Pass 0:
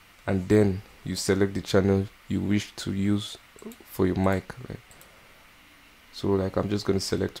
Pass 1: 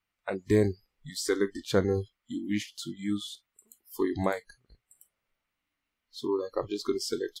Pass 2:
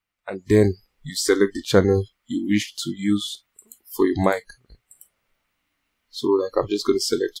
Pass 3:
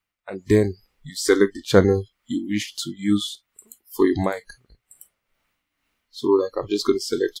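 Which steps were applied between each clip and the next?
noise reduction from a noise print of the clip's start 28 dB; level −3 dB
automatic gain control gain up to 10 dB
amplitude tremolo 2.2 Hz, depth 59%; level +2 dB

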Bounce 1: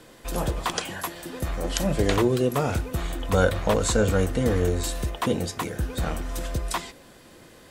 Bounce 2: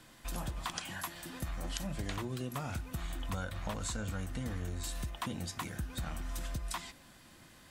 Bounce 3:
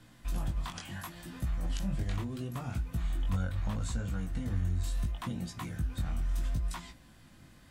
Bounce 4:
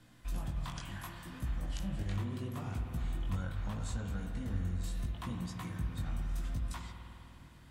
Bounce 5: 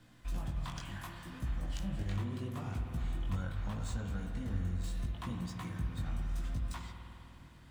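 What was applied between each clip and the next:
parametric band 450 Hz −13.5 dB 0.78 octaves; downward compressor, threshold −29 dBFS, peak gain reduction 11 dB; level −5.5 dB
chorus effect 0.73 Hz, delay 16.5 ms, depth 5.4 ms; bass and treble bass +9 dB, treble −2 dB
spring reverb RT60 3.2 s, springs 50 ms, chirp 50 ms, DRR 3.5 dB; level −4 dB
running median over 3 samples

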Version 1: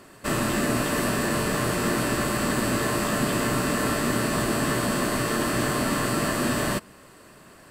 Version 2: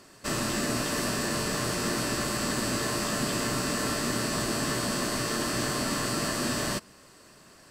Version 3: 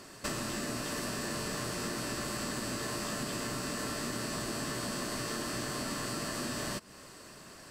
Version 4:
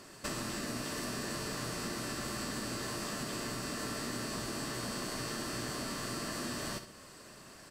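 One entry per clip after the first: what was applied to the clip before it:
parametric band 5,500 Hz +10 dB 1 octave; level −5.5 dB
downward compressor 10 to 1, threshold −36 dBFS, peak gain reduction 11.5 dB; level +3 dB
repeating echo 66 ms, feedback 42%, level −10 dB; level −2.5 dB

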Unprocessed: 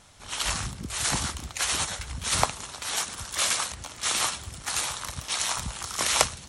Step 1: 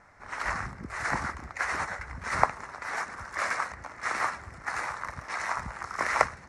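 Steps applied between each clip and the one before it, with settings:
drawn EQ curve 120 Hz 0 dB, 2,000 Hz +11 dB, 3,200 Hz −18 dB, 5,000 Hz −7 dB, 8,300 Hz −14 dB, 14,000 Hz −21 dB
level −6 dB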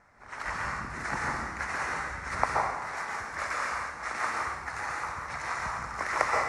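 dense smooth reverb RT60 1.1 s, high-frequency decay 0.95×, pre-delay 115 ms, DRR −2.5 dB
level −4.5 dB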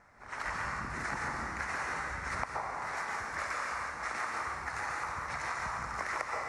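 downward compressor 10 to 1, threshold −32 dBFS, peak gain reduction 13.5 dB

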